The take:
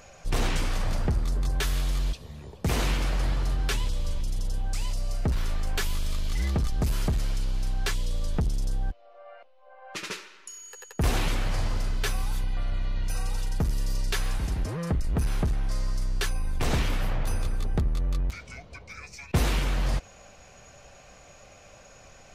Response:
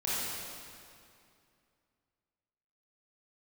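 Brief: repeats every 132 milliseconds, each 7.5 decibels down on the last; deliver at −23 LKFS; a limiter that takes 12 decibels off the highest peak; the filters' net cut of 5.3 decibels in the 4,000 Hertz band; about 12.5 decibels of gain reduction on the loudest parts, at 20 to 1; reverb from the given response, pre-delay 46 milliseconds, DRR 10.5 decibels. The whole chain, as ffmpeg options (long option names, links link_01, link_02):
-filter_complex "[0:a]equalizer=frequency=4000:width_type=o:gain=-7,acompressor=threshold=-32dB:ratio=20,alimiter=level_in=9dB:limit=-24dB:level=0:latency=1,volume=-9dB,aecho=1:1:132|264|396|528|660:0.422|0.177|0.0744|0.0312|0.0131,asplit=2[link_01][link_02];[1:a]atrim=start_sample=2205,adelay=46[link_03];[link_02][link_03]afir=irnorm=-1:irlink=0,volume=-18.5dB[link_04];[link_01][link_04]amix=inputs=2:normalize=0,volume=19dB"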